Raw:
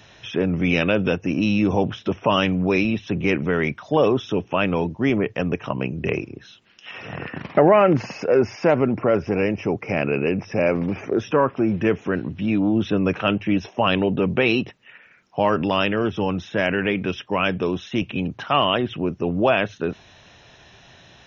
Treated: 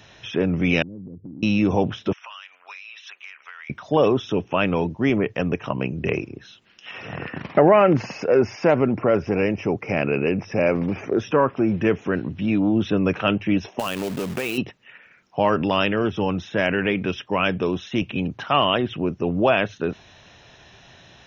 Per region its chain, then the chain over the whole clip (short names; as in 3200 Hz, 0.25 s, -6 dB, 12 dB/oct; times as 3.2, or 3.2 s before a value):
0.82–1.43 inverse Chebyshev low-pass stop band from 1900 Hz, stop band 80 dB + compressor, threshold -35 dBFS
2.13–3.7 HPF 1200 Hz 24 dB/oct + compressor 16:1, threshold -35 dBFS
13.79–14.58 low shelf 170 Hz -6.5 dB + compressor 2.5:1, threshold -25 dBFS + companded quantiser 4-bit
whole clip: dry